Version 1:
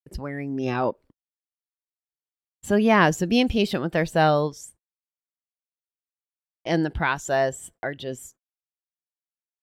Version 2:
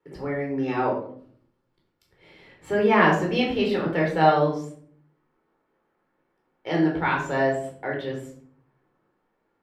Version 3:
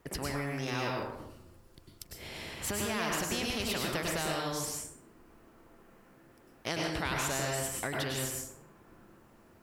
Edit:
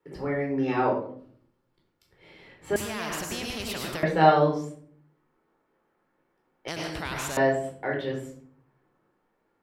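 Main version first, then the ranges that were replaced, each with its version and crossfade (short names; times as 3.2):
2
2.76–4.03 from 3
6.68–7.37 from 3
not used: 1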